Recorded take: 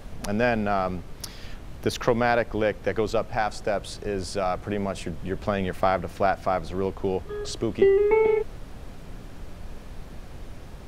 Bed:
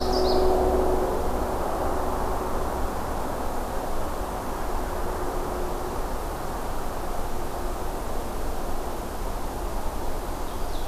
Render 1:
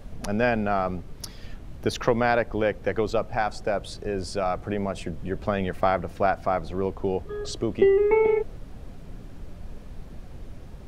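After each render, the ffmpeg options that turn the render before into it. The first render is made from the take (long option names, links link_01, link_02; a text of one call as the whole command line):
ffmpeg -i in.wav -af "afftdn=noise_reduction=6:noise_floor=-42" out.wav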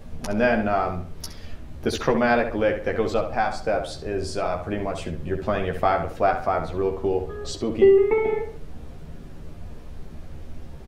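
ffmpeg -i in.wav -filter_complex "[0:a]asplit=2[link_01][link_02];[link_02]adelay=13,volume=-4dB[link_03];[link_01][link_03]amix=inputs=2:normalize=0,asplit=2[link_04][link_05];[link_05]adelay=67,lowpass=frequency=3300:poles=1,volume=-7.5dB,asplit=2[link_06][link_07];[link_07]adelay=67,lowpass=frequency=3300:poles=1,volume=0.37,asplit=2[link_08][link_09];[link_09]adelay=67,lowpass=frequency=3300:poles=1,volume=0.37,asplit=2[link_10][link_11];[link_11]adelay=67,lowpass=frequency=3300:poles=1,volume=0.37[link_12];[link_04][link_06][link_08][link_10][link_12]amix=inputs=5:normalize=0" out.wav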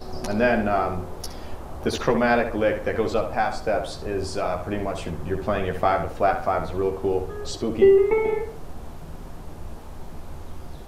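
ffmpeg -i in.wav -i bed.wav -filter_complex "[1:a]volume=-13.5dB[link_01];[0:a][link_01]amix=inputs=2:normalize=0" out.wav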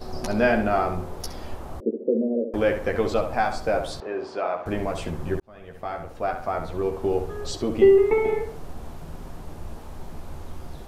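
ffmpeg -i in.wav -filter_complex "[0:a]asettb=1/sr,asplit=3[link_01][link_02][link_03];[link_01]atrim=end=1.804[link_04];[link_02]atrim=start=1.8:end=2.54,asetpts=PTS-STARTPTS,afade=type=in:duration=0.004:curve=qsin,afade=type=out:start_time=0.736:duration=0.004:curve=qsin,asuperpass=centerf=330:order=12:qfactor=0.95[link_05];[link_03]atrim=start=2.536[link_06];[link_04][link_05]acrossfade=duration=0.004:curve1=hsin:curve2=qsin[link_07];[link_07][link_06]acrossfade=duration=0.004:curve1=qsin:curve2=hsin,asettb=1/sr,asplit=3[link_08][link_09][link_10];[link_08]atrim=end=4.004[link_11];[link_09]atrim=start=4:end=4.66,asetpts=PTS-STARTPTS,afade=type=in:duration=0.004:curve=qsin,afade=type=out:start_time=0.656:duration=0.004:curve=qsin,highpass=350,lowpass=2600[link_12];[link_10]atrim=start=4.656[link_13];[link_11][link_12]acrossfade=duration=0.004:curve1=hsin:curve2=qsin[link_14];[link_14][link_13]acrossfade=duration=0.004:curve1=qsin:curve2=hsin,asplit=2[link_15][link_16];[link_15]atrim=end=5.4,asetpts=PTS-STARTPTS,afade=type=out:start_time=5.396:duration=0.004:curve=hsin[link_17];[link_16]atrim=start=5.4,asetpts=PTS-STARTPTS,afade=type=in:duration=1.79[link_18];[link_17][link_18]concat=n=2:v=0:a=1" out.wav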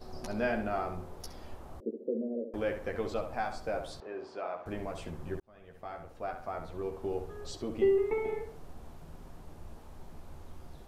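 ffmpeg -i in.wav -af "volume=-11dB" out.wav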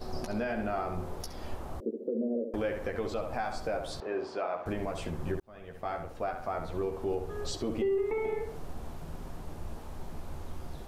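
ffmpeg -i in.wav -af "acontrast=87,alimiter=limit=-23dB:level=0:latency=1:release=223" out.wav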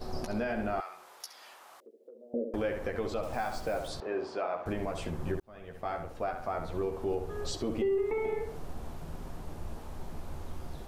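ffmpeg -i in.wav -filter_complex "[0:a]asettb=1/sr,asplit=3[link_01][link_02][link_03];[link_01]atrim=end=0.804[link_04];[link_02]atrim=start=0.8:end=2.34,asetpts=PTS-STARTPTS,afade=type=in:duration=0.004:curve=qsin,afade=type=out:start_time=1.536:duration=0.004:curve=qsin,highpass=1300[link_05];[link_03]atrim=start=2.336[link_06];[link_04][link_05]acrossfade=duration=0.004:curve1=hsin:curve2=qsin[link_07];[link_07][link_06]acrossfade=duration=0.004:curve1=qsin:curve2=hsin,asettb=1/sr,asplit=3[link_08][link_09][link_10];[link_08]atrim=end=3.234[link_11];[link_09]atrim=start=3.23:end=3.88,asetpts=PTS-STARTPTS,afade=type=in:duration=0.004:curve=qsin,afade=type=out:start_time=0.646:duration=0.004:curve=qsin,acrusher=bits=7:mix=0:aa=0.5[link_12];[link_10]atrim=start=3.876[link_13];[link_11][link_12]acrossfade=duration=0.004:curve1=hsin:curve2=qsin[link_14];[link_14][link_13]acrossfade=duration=0.004:curve1=qsin:curve2=hsin" out.wav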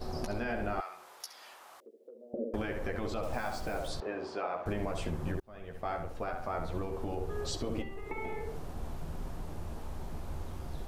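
ffmpeg -i in.wav -af "afftfilt=real='re*lt(hypot(re,im),0.2)':imag='im*lt(hypot(re,im),0.2)':win_size=1024:overlap=0.75,lowshelf=frequency=67:gain=6" out.wav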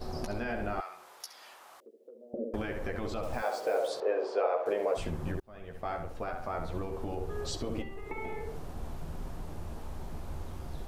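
ffmpeg -i in.wav -filter_complex "[0:a]asettb=1/sr,asplit=3[link_01][link_02][link_03];[link_01]atrim=end=3.424[link_04];[link_02]atrim=start=3.42:end=4.97,asetpts=PTS-STARTPTS,afade=type=in:duration=0.004:curve=qsin,afade=type=out:start_time=1.546:duration=0.004:curve=qsin,highpass=frequency=480:width_type=q:width=4.6[link_05];[link_03]atrim=start=4.966[link_06];[link_04][link_05]acrossfade=duration=0.004:curve1=hsin:curve2=qsin[link_07];[link_07][link_06]acrossfade=duration=0.004:curve1=qsin:curve2=hsin" out.wav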